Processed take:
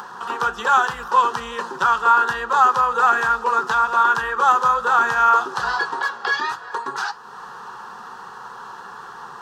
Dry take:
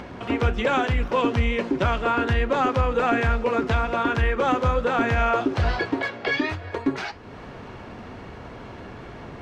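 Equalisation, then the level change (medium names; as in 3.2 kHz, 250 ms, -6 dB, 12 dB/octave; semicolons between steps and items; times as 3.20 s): tilt EQ +4 dB/octave; high-order bell 1.2 kHz +11 dB; static phaser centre 430 Hz, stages 8; 0.0 dB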